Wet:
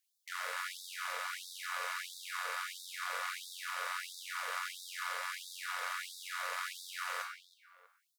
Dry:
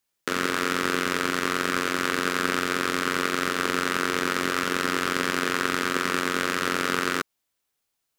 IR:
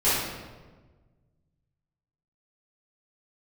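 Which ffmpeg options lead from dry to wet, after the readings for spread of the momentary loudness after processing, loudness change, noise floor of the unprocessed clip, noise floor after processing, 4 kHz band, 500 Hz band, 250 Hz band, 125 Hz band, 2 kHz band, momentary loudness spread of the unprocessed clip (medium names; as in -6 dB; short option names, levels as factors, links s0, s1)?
4 LU, -14.5 dB, -79 dBFS, -80 dBFS, -13.0 dB, -24.0 dB, under -40 dB, under -40 dB, -14.0 dB, 1 LU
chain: -filter_complex "[0:a]alimiter=limit=0.237:level=0:latency=1:release=133,asplit=2[s0][s1];[s1]adelay=323,lowpass=f=1500:p=1,volume=0.282,asplit=2[s2][s3];[s3]adelay=323,lowpass=f=1500:p=1,volume=0.3,asplit=2[s4][s5];[s5]adelay=323,lowpass=f=1500:p=1,volume=0.3[s6];[s0][s2][s4][s6]amix=inputs=4:normalize=0,asplit=2[s7][s8];[1:a]atrim=start_sample=2205,highshelf=f=5700:g=7[s9];[s8][s9]afir=irnorm=-1:irlink=0,volume=0.075[s10];[s7][s10]amix=inputs=2:normalize=0,asoftclip=type=hard:threshold=0.0531,afftfilt=real='re*gte(b*sr/1024,450*pow(3500/450,0.5+0.5*sin(2*PI*1.5*pts/sr)))':imag='im*gte(b*sr/1024,450*pow(3500/450,0.5+0.5*sin(2*PI*1.5*pts/sr)))':win_size=1024:overlap=0.75,volume=0.631"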